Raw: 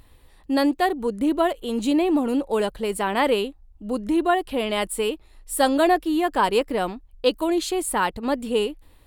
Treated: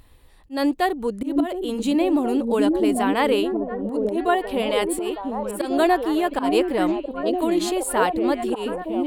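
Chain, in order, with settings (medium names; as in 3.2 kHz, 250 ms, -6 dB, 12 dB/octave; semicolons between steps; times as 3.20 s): slow attack 153 ms; repeats whose band climbs or falls 721 ms, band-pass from 270 Hz, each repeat 0.7 oct, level 0 dB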